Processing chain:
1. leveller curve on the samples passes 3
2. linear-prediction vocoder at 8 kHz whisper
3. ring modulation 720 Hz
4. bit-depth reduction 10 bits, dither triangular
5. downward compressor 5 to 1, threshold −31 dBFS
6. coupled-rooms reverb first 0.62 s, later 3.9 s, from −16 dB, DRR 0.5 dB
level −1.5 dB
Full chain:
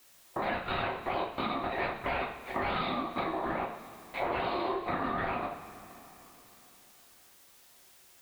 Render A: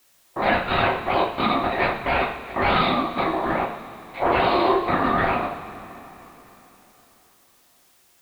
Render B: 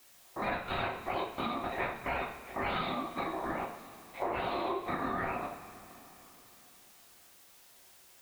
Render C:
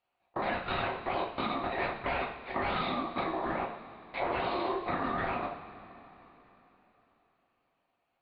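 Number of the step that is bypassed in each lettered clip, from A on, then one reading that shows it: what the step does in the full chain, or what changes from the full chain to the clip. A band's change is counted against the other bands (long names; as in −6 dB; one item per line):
5, average gain reduction 10.0 dB
1, change in momentary loudness spread +6 LU
4, change in momentary loudness spread −4 LU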